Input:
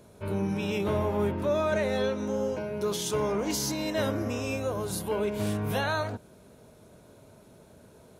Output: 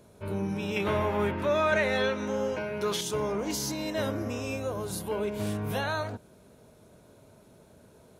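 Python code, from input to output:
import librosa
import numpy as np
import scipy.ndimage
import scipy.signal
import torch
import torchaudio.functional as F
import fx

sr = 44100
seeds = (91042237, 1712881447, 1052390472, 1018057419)

y = fx.peak_eq(x, sr, hz=2000.0, db=10.0, octaves=2.1, at=(0.76, 3.01))
y = y * librosa.db_to_amplitude(-2.0)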